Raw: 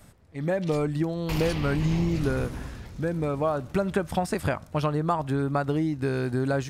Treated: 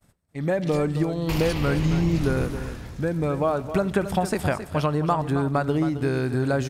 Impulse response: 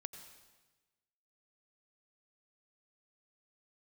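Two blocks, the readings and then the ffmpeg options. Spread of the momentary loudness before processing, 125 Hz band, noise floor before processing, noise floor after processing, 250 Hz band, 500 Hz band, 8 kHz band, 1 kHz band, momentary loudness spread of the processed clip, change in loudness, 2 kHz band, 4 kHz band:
5 LU, +3.0 dB, −51 dBFS, −49 dBFS, +3.0 dB, +3.0 dB, +3.0 dB, +3.0 dB, 6 LU, +3.0 dB, +3.0 dB, +3.0 dB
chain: -filter_complex "[0:a]agate=range=-33dB:threshold=-43dB:ratio=3:detection=peak,aecho=1:1:269:0.282,asplit=2[link_01][link_02];[1:a]atrim=start_sample=2205,highshelf=frequency=11000:gain=7.5[link_03];[link_02][link_03]afir=irnorm=-1:irlink=0,volume=-5.5dB[link_04];[link_01][link_04]amix=inputs=2:normalize=0"

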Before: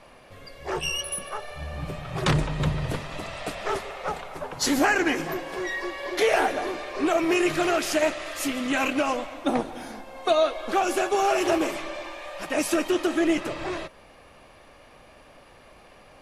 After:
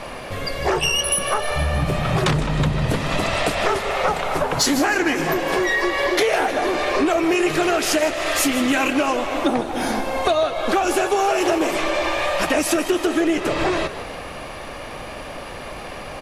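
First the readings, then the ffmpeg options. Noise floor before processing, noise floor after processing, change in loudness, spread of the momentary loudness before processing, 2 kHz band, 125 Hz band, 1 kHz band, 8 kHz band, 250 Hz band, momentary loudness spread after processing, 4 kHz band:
−52 dBFS, −33 dBFS, +6.0 dB, 13 LU, +6.5 dB, +7.0 dB, +6.0 dB, +8.0 dB, +5.5 dB, 15 LU, +7.5 dB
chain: -filter_complex "[0:a]acompressor=threshold=-35dB:ratio=6,aeval=exprs='0.376*sin(PI/2*5.01*val(0)/0.376)':channel_layout=same,asplit=7[link_01][link_02][link_03][link_04][link_05][link_06][link_07];[link_02]adelay=156,afreqshift=58,volume=-14dB[link_08];[link_03]adelay=312,afreqshift=116,volume=-19.2dB[link_09];[link_04]adelay=468,afreqshift=174,volume=-24.4dB[link_10];[link_05]adelay=624,afreqshift=232,volume=-29.6dB[link_11];[link_06]adelay=780,afreqshift=290,volume=-34.8dB[link_12];[link_07]adelay=936,afreqshift=348,volume=-40dB[link_13];[link_01][link_08][link_09][link_10][link_11][link_12][link_13]amix=inputs=7:normalize=0"

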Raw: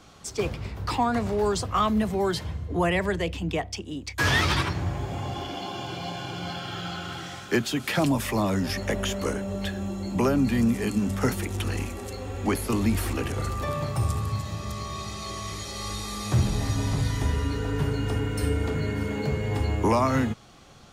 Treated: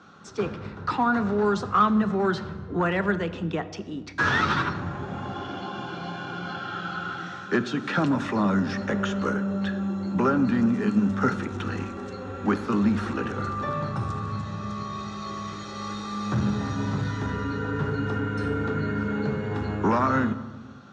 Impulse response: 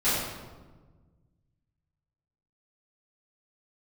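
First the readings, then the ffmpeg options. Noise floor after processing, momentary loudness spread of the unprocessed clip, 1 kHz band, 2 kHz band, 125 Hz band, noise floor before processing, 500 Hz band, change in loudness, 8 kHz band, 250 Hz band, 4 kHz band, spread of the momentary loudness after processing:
−40 dBFS, 10 LU, +2.5 dB, +1.5 dB, −2.5 dB, −42 dBFS, −0.5 dB, +0.5 dB, below −10 dB, +2.5 dB, −6.0 dB, 12 LU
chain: -filter_complex "[0:a]asplit=2[link_01][link_02];[1:a]atrim=start_sample=2205[link_03];[link_02][link_03]afir=irnorm=-1:irlink=0,volume=-25dB[link_04];[link_01][link_04]amix=inputs=2:normalize=0,aeval=exprs='clip(val(0),-1,0.126)':channel_layout=same,highpass=140,equalizer=frequency=200:width_type=q:width=4:gain=5,equalizer=frequency=670:width_type=q:width=4:gain=-5,equalizer=frequency=1400:width_type=q:width=4:gain=10,equalizer=frequency=2200:width_type=q:width=4:gain=-7,equalizer=frequency=3100:width_type=q:width=4:gain=-6,equalizer=frequency=4800:width_type=q:width=4:gain=-9,lowpass=frequency=5200:width=0.5412,lowpass=frequency=5200:width=1.3066"

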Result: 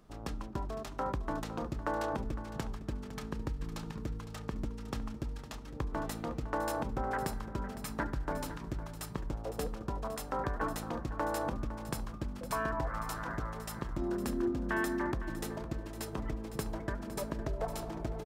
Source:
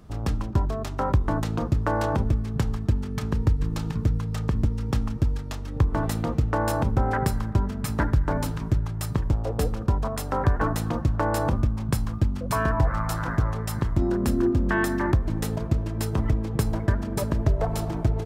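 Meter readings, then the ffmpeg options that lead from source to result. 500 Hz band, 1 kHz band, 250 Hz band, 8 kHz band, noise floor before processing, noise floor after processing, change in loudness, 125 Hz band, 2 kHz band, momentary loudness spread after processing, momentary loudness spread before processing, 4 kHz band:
−8.5 dB, −8.0 dB, −10.5 dB, −8.0 dB, −32 dBFS, −45 dBFS, −12.0 dB, −17.0 dB, −8.0 dB, 7 LU, 4 LU, −8.0 dB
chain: -filter_complex "[0:a]equalizer=frequency=89:width=0.94:gain=-13.5,asplit=2[link_01][link_02];[link_02]aecho=0:1:508|1016|1524:0.224|0.056|0.014[link_03];[link_01][link_03]amix=inputs=2:normalize=0,volume=-8dB"

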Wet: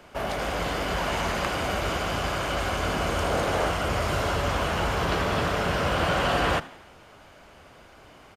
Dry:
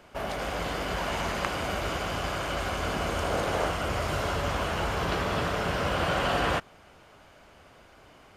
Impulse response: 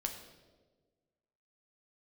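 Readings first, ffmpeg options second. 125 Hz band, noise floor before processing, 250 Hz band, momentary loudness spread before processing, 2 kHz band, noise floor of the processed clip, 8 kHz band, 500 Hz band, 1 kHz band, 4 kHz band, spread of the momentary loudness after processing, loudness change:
+3.5 dB, −55 dBFS, +3.0 dB, 5 LU, +3.0 dB, −51 dBFS, +3.0 dB, +3.0 dB, +3.0 dB, +3.0 dB, 4 LU, +3.0 dB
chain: -filter_complex "[0:a]acrossover=split=120[link_01][link_02];[link_02]asoftclip=type=tanh:threshold=-18.5dB[link_03];[link_01][link_03]amix=inputs=2:normalize=0,asplit=5[link_04][link_05][link_06][link_07][link_08];[link_05]adelay=83,afreqshift=93,volume=-20dB[link_09];[link_06]adelay=166,afreqshift=186,volume=-25.5dB[link_10];[link_07]adelay=249,afreqshift=279,volume=-31dB[link_11];[link_08]adelay=332,afreqshift=372,volume=-36.5dB[link_12];[link_04][link_09][link_10][link_11][link_12]amix=inputs=5:normalize=0,volume=3.5dB"

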